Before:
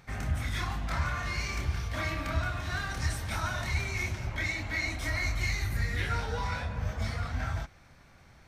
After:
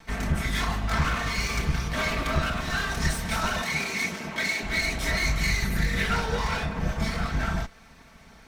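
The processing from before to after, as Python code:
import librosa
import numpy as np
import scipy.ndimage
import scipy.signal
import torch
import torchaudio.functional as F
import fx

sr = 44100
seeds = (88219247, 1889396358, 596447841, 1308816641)

y = fx.lower_of_two(x, sr, delay_ms=4.5)
y = fx.highpass(y, sr, hz=200.0, slope=12, at=(3.62, 4.63))
y = y * librosa.db_to_amplitude(7.5)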